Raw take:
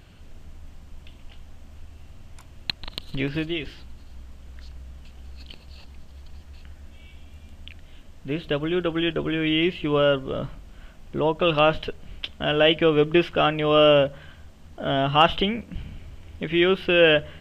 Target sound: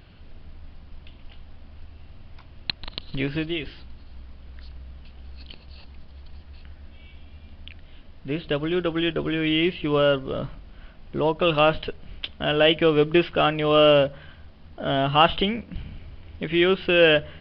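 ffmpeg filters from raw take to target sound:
-af "acrusher=bits=7:mode=log:mix=0:aa=0.000001,aresample=11025,aresample=44100"

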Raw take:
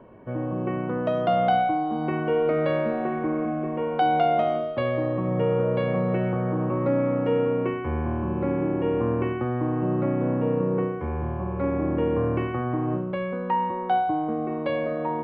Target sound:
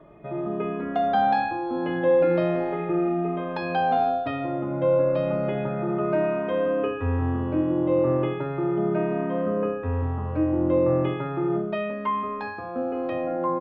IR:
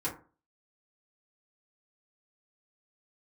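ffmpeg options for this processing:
-filter_complex "[0:a]asetrate=49392,aresample=44100,asplit=2[s0][s1];[1:a]atrim=start_sample=2205,lowshelf=f=390:g=7.5[s2];[s1][s2]afir=irnorm=-1:irlink=0,volume=0.224[s3];[s0][s3]amix=inputs=2:normalize=0,asplit=2[s4][s5];[s5]adelay=2.9,afreqshift=0.35[s6];[s4][s6]amix=inputs=2:normalize=1"

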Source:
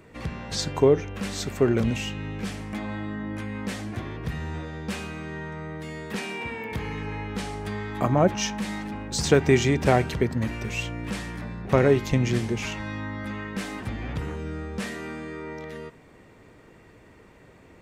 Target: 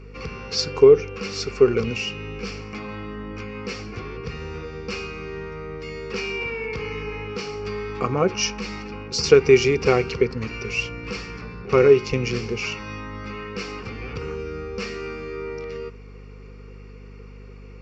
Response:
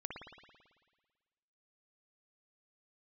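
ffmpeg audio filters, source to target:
-af "aresample=16000,aresample=44100,aeval=exprs='val(0)+0.0141*(sin(2*PI*50*n/s)+sin(2*PI*2*50*n/s)/2+sin(2*PI*3*50*n/s)/3+sin(2*PI*4*50*n/s)/4+sin(2*PI*5*50*n/s)/5)':c=same,superequalizer=7b=3.55:8b=0.631:10b=2.51:12b=3.16:14b=3.55,volume=0.668"

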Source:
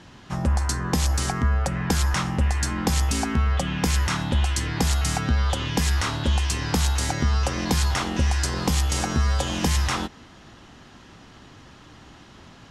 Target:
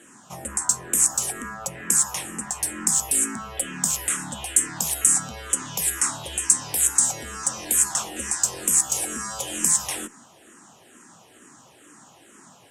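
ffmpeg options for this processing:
-filter_complex "[0:a]highshelf=f=6100:t=q:w=3:g=11.5,asplit=2[s0][s1];[s1]volume=4.22,asoftclip=hard,volume=0.237,volume=0.282[s2];[s0][s2]amix=inputs=2:normalize=0,highpass=230,acrossover=split=1800[s3][s4];[s3]asoftclip=type=tanh:threshold=0.0422[s5];[s5][s4]amix=inputs=2:normalize=0,bandreject=f=2100:w=30,asplit=2[s6][s7];[s7]afreqshift=-2.2[s8];[s6][s8]amix=inputs=2:normalize=1,volume=0.891"

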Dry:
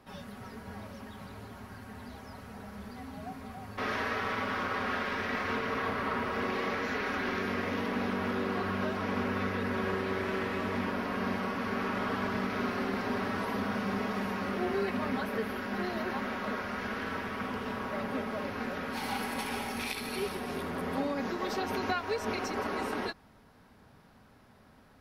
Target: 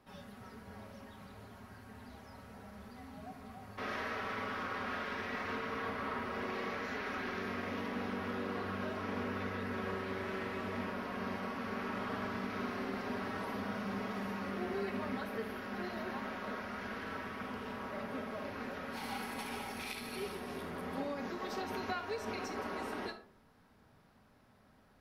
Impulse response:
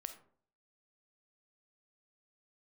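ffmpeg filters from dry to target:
-filter_complex "[1:a]atrim=start_sample=2205[s0];[0:a][s0]afir=irnorm=-1:irlink=0,volume=0.708"

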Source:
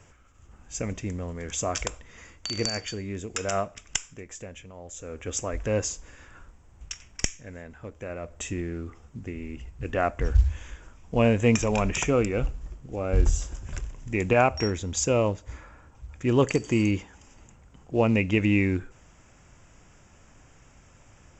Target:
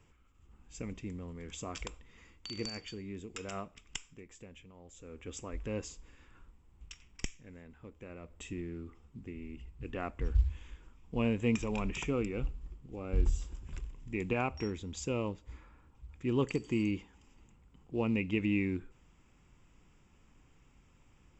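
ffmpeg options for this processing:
-af "equalizer=f=100:t=o:w=0.67:g=-6,equalizer=f=630:t=o:w=0.67:g=-11,equalizer=f=1600:t=o:w=0.67:g=-8,equalizer=f=6300:t=o:w=0.67:g=-12,volume=0.473"

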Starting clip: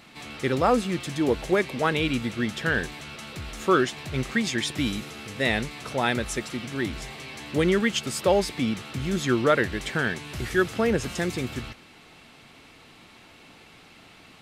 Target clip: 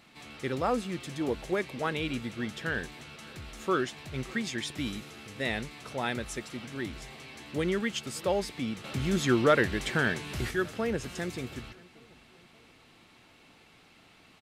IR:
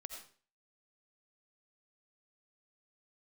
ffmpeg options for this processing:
-filter_complex "[0:a]asettb=1/sr,asplit=3[s0][s1][s2];[s0]atrim=end=8.844[s3];[s1]atrim=start=8.84:end=10.51,asetpts=PTS-STARTPTS,afade=t=in:d=0.004:c=qsin,afade=t=out:st=1.666:d=0.004:c=qsin,acontrast=63[s4];[s2]atrim=start=10.506[s5];[s3][s4]acrossfade=d=0.004:c1=hsin:c2=qsin[s6];[s6][s5]acrossfade=d=0.004:c1=qsin:c2=hsin,asplit=2[s7][s8];[s8]adelay=582,lowpass=f=2000:p=1,volume=0.075,asplit=2[s9][s10];[s10]adelay=582,lowpass=f=2000:p=1,volume=0.48,asplit=2[s11][s12];[s12]adelay=582,lowpass=f=2000:p=1,volume=0.48[s13];[s9][s11][s13]amix=inputs=3:normalize=0[s14];[s7][s14]amix=inputs=2:normalize=0,volume=0.422"

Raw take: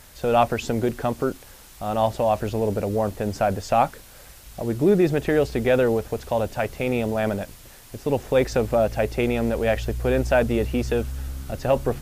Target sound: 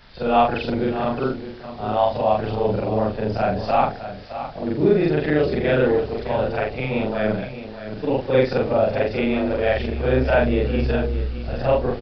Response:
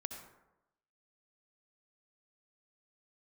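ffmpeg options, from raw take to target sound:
-filter_complex "[0:a]afftfilt=real='re':imag='-im':win_size=4096:overlap=0.75,aresample=11025,aresample=44100,bandreject=f=52.58:t=h:w=4,bandreject=f=105.16:t=h:w=4,bandreject=f=157.74:t=h:w=4,bandreject=f=210.32:t=h:w=4,bandreject=f=262.9:t=h:w=4,bandreject=f=315.48:t=h:w=4,bandreject=f=368.06:t=h:w=4,bandreject=f=420.64:t=h:w=4,bandreject=f=473.22:t=h:w=4,bandreject=f=525.8:t=h:w=4,bandreject=f=578.38:t=h:w=4,bandreject=f=630.96:t=h:w=4,bandreject=f=683.54:t=h:w=4,bandreject=f=736.12:t=h:w=4,bandreject=f=788.7:t=h:w=4,bandreject=f=841.28:t=h:w=4,asplit=2[s0][s1];[s1]aecho=0:1:615:0.266[s2];[s0][s2]amix=inputs=2:normalize=0,volume=2.11"

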